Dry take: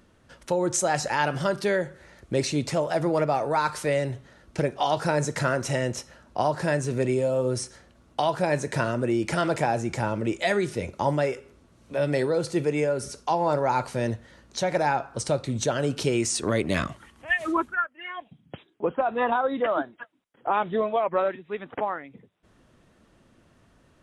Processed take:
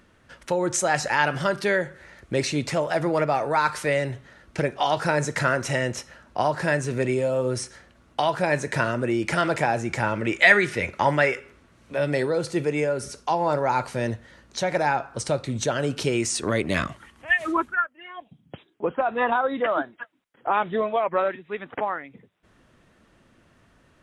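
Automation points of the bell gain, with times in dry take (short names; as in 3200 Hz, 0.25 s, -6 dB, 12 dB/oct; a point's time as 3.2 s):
bell 1900 Hz 1.5 oct
9.85 s +6 dB
10.43 s +15 dB
11.24 s +15 dB
12.12 s +3.5 dB
17.79 s +3.5 dB
18.08 s -7.5 dB
18.97 s +4.5 dB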